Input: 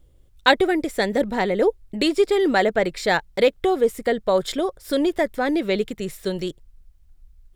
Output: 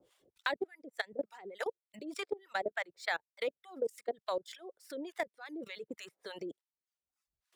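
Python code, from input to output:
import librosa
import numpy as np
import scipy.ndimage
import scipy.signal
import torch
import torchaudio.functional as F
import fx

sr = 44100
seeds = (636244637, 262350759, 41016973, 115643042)

y = scipy.ndimage.median_filter(x, 3, mode='constant')
y = scipy.signal.sosfilt(scipy.signal.butter(2, 420.0, 'highpass', fs=sr, output='sos'), y)
y = fx.level_steps(y, sr, step_db=20)
y = fx.harmonic_tremolo(y, sr, hz=3.4, depth_pct=100, crossover_hz=760.0)
y = fx.dereverb_blind(y, sr, rt60_s=0.96)
y = fx.vibrato(y, sr, rate_hz=6.6, depth_cents=49.0)
y = fx.band_squash(y, sr, depth_pct=70)
y = F.gain(torch.from_numpy(y), -6.0).numpy()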